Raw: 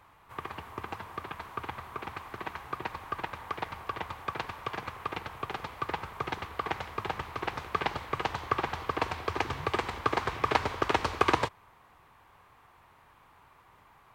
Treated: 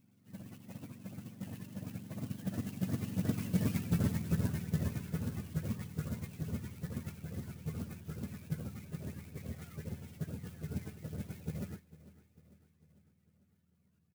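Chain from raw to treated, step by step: spectrum inverted on a logarithmic axis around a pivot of 450 Hz; Doppler pass-by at 3.87 s, 34 m/s, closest 26 m; treble shelf 3 kHz +11 dB; feedback delay 448 ms, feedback 54%, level -18 dB; sampling jitter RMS 0.072 ms; trim +4 dB

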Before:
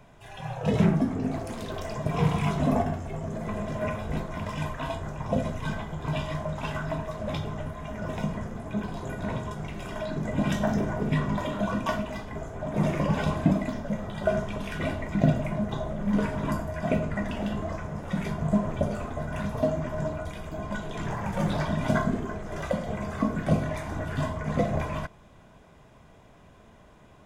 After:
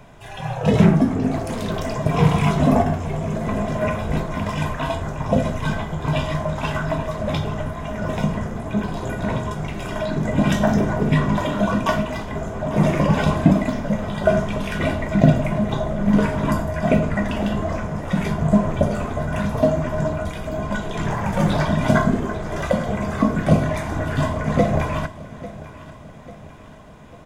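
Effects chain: feedback delay 845 ms, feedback 51%, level -17 dB; trim +8 dB

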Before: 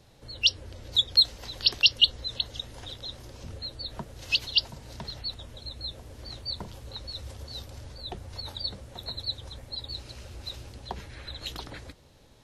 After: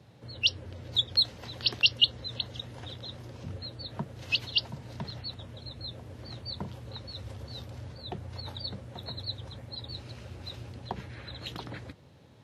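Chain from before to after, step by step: high-pass 93 Hz 24 dB/octave; tone controls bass +6 dB, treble -9 dB

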